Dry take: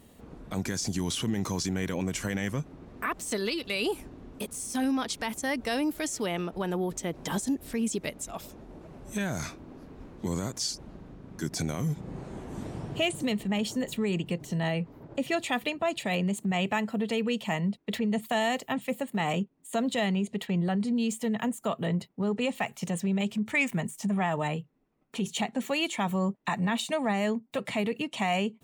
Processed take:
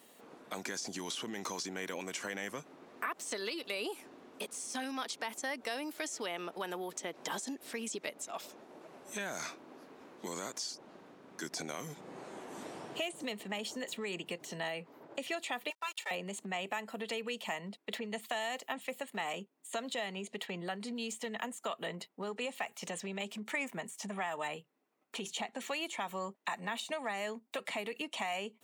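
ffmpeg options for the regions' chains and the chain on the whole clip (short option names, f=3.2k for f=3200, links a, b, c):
-filter_complex "[0:a]asettb=1/sr,asplit=3[a][b][c];[a]atrim=end=15.704[d];[b]atrim=start=15.7:end=16.11,asetpts=PTS-STARTPTS,afade=t=in:d=0.004:c=qsin,afade=t=out:st=0.406:d=0.004:c=qsin,highpass=1.1k,aeval=exprs='sgn(val(0))*max(abs(val(0))-0.00376,0)':c=same,aecho=1:1:2.2:0.93,atrim=end_sample=18081[e];[c]atrim=start=16.106[f];[d][e]acrossfade=d=0.004:c1=hsin:c2=qsin[g];[g][f]acrossfade=d=0.004:c1=qsin:c2=hsin,highpass=270,lowshelf=f=350:g=-11,acrossover=split=1300|7700[h][i][j];[h]acompressor=threshold=-39dB:ratio=4[k];[i]acompressor=threshold=-41dB:ratio=4[l];[j]acompressor=threshold=-57dB:ratio=4[m];[k][l][m]amix=inputs=3:normalize=0,volume=1dB"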